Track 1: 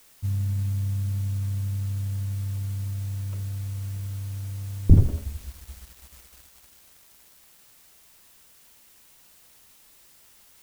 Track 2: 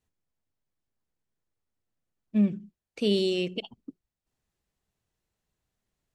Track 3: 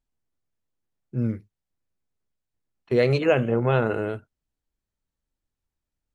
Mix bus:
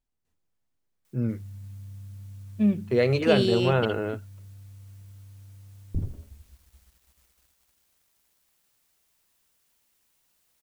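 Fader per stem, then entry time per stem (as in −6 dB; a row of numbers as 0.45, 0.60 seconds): −15.0, +1.0, −2.0 decibels; 1.05, 0.25, 0.00 seconds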